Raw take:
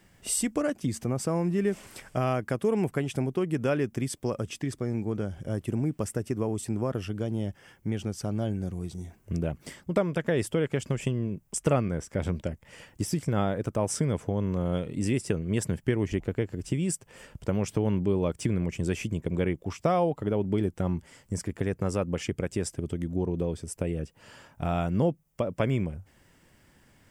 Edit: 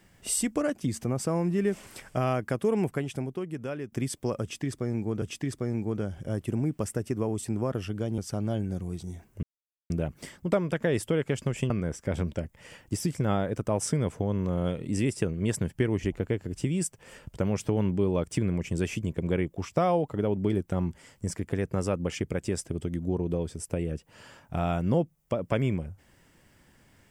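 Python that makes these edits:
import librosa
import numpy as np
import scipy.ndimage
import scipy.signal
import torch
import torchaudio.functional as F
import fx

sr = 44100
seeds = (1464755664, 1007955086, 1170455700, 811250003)

y = fx.edit(x, sr, fx.fade_out_to(start_s=2.82, length_s=1.1, curve='qua', floor_db=-9.0),
    fx.repeat(start_s=4.42, length_s=0.8, count=2),
    fx.cut(start_s=7.38, length_s=0.71),
    fx.insert_silence(at_s=9.34, length_s=0.47),
    fx.cut(start_s=11.14, length_s=0.64), tone=tone)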